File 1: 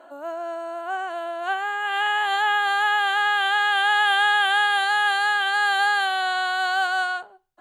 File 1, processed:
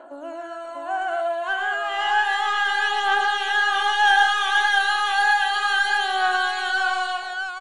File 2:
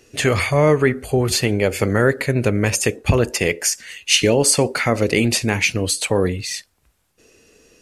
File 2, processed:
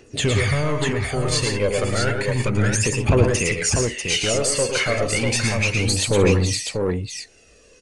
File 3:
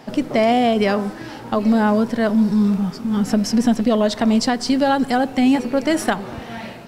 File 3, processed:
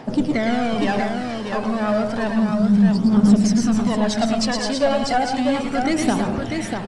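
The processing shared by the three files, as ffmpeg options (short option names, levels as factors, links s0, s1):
-filter_complex "[0:a]alimiter=limit=0.447:level=0:latency=1:release=221,asoftclip=type=tanh:threshold=0.188,aphaser=in_gain=1:out_gain=1:delay=2:decay=0.58:speed=0.32:type=triangular,asplit=2[s0][s1];[s1]aecho=0:1:108|118|172|643:0.447|0.398|0.188|0.562[s2];[s0][s2]amix=inputs=2:normalize=0,aresample=22050,aresample=44100,volume=0.794"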